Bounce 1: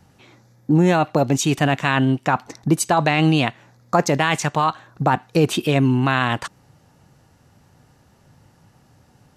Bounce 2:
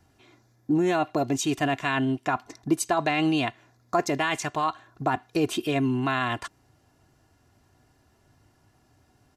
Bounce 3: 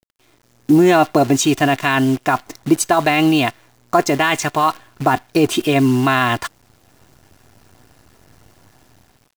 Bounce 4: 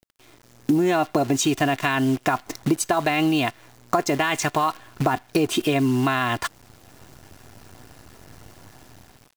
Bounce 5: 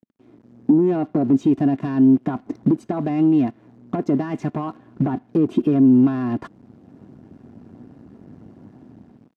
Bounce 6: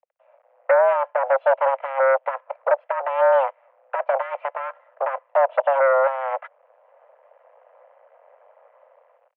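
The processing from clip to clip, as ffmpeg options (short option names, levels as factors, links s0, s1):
-af "aecho=1:1:2.9:0.58,volume=0.398"
-af "dynaudnorm=f=200:g=5:m=5.96,acrusher=bits=6:dc=4:mix=0:aa=0.000001"
-af "acompressor=threshold=0.0708:ratio=4,volume=1.5"
-filter_complex "[0:a]asplit=2[s0][s1];[s1]aeval=exprs='0.562*sin(PI/2*3.55*val(0)/0.562)':c=same,volume=0.562[s2];[s0][s2]amix=inputs=2:normalize=0,bandpass=f=230:t=q:w=2.3:csg=0"
-af "aeval=exprs='0.501*(cos(1*acos(clip(val(0)/0.501,-1,1)))-cos(1*PI/2))+0.0708*(cos(6*acos(clip(val(0)/0.501,-1,1)))-cos(6*PI/2))+0.0316*(cos(7*acos(clip(val(0)/0.501,-1,1)))-cos(7*PI/2))':c=same,highpass=f=340:t=q:w=0.5412,highpass=f=340:t=q:w=1.307,lowpass=f=2500:t=q:w=0.5176,lowpass=f=2500:t=q:w=0.7071,lowpass=f=2500:t=q:w=1.932,afreqshift=270,volume=1.5"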